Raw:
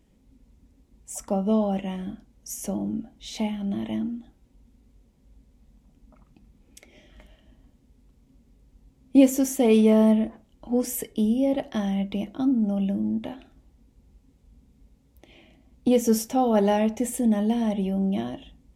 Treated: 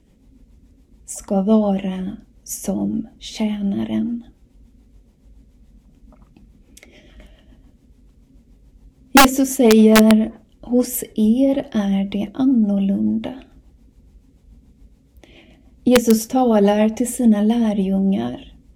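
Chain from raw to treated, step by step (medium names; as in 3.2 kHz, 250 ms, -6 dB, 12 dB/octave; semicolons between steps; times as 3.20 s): rotary cabinet horn 7 Hz; integer overflow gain 11.5 dB; trim +8.5 dB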